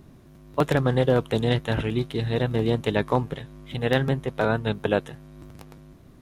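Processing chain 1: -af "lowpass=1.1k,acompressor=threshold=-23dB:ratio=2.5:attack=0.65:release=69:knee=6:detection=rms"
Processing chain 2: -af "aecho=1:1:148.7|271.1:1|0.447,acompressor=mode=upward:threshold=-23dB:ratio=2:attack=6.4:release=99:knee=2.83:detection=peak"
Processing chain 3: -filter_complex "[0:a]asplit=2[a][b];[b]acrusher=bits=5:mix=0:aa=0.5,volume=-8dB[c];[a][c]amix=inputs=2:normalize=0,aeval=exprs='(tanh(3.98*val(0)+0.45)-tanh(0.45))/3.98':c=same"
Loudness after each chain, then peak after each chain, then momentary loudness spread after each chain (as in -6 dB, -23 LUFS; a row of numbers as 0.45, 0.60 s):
-30.0, -21.5, -24.5 LUFS; -16.5, -5.5, -9.5 dBFS; 17, 17, 11 LU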